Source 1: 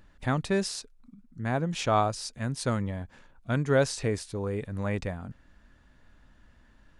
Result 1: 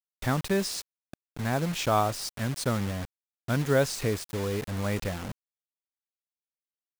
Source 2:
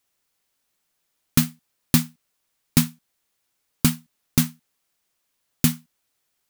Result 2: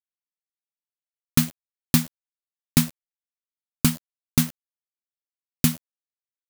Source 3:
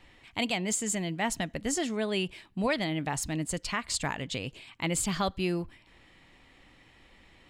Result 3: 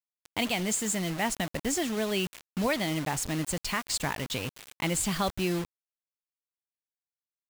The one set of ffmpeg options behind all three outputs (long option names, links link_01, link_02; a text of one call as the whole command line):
ffmpeg -i in.wav -filter_complex "[0:a]asplit=2[link_01][link_02];[link_02]acompressor=threshold=-41dB:ratio=4,volume=1dB[link_03];[link_01][link_03]amix=inputs=2:normalize=0,acrusher=bits=5:mix=0:aa=0.000001,volume=-1.5dB" out.wav